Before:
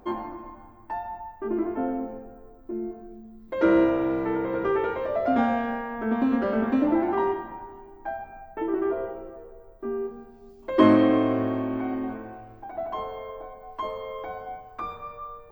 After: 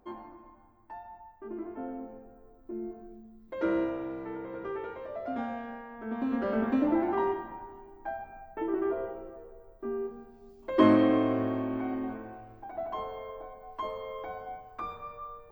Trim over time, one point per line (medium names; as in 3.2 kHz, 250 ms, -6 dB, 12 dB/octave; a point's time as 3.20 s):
1.58 s -12 dB
3.04 s -4.5 dB
4.15 s -12 dB
5.98 s -12 dB
6.53 s -4 dB